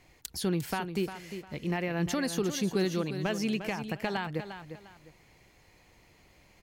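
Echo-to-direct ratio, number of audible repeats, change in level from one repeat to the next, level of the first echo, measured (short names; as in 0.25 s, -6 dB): -9.5 dB, 2, -11.0 dB, -10.0 dB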